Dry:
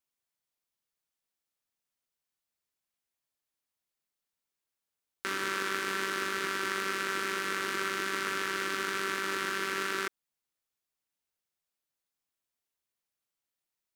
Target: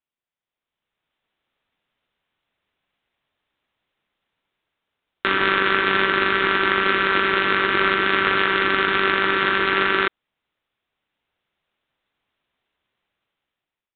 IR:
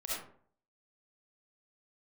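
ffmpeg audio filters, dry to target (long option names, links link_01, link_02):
-af "dynaudnorm=framelen=370:gausssize=5:maxgain=16.5dB,aresample=8000,acrusher=bits=2:mode=log:mix=0:aa=0.000001,aresample=44100"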